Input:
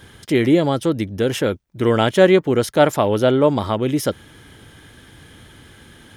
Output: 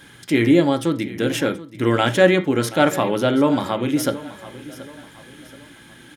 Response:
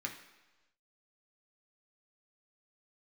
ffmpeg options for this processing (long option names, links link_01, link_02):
-filter_complex "[0:a]aecho=1:1:728|1456|2184:0.141|0.0579|0.0237,asplit=2[link_01][link_02];[1:a]atrim=start_sample=2205,atrim=end_sample=3969[link_03];[link_02][link_03]afir=irnorm=-1:irlink=0,volume=-1.5dB[link_04];[link_01][link_04]amix=inputs=2:normalize=0,volume=-3.5dB"